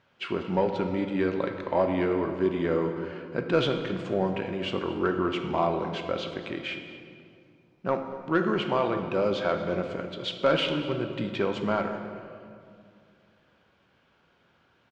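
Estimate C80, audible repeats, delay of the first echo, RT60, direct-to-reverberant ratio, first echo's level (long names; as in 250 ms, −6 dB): 7.5 dB, 1, 230 ms, 2.3 s, 5.5 dB, −19.0 dB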